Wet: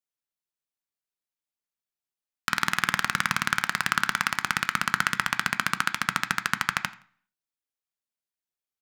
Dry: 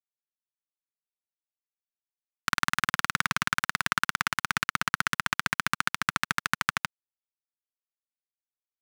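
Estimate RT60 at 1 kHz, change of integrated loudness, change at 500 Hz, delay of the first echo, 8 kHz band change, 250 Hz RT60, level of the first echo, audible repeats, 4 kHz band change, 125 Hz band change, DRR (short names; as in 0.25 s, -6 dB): 0.45 s, +2.0 dB, +2.0 dB, 85 ms, +1.5 dB, 0.55 s, -22.5 dB, 2, +1.5 dB, +1.5 dB, 10.5 dB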